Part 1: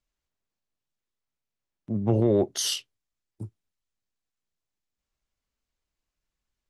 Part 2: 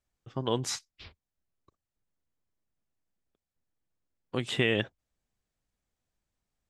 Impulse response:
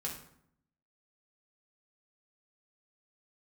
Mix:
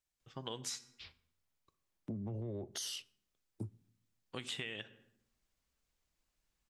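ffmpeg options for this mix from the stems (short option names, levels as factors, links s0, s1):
-filter_complex "[0:a]acrossover=split=150[s0][s1];[s1]acompressor=threshold=0.0355:ratio=6[s2];[s0][s2]amix=inputs=2:normalize=0,alimiter=level_in=1.78:limit=0.0631:level=0:latency=1:release=46,volume=0.562,adelay=200,volume=1.06,asplit=2[s3][s4];[s4]volume=0.0891[s5];[1:a]tiltshelf=f=1500:g=-6,volume=0.422,asplit=2[s6][s7];[s7]volume=0.282[s8];[2:a]atrim=start_sample=2205[s9];[s5][s8]amix=inputs=2:normalize=0[s10];[s10][s9]afir=irnorm=-1:irlink=0[s11];[s3][s6][s11]amix=inputs=3:normalize=0,acompressor=threshold=0.0126:ratio=10"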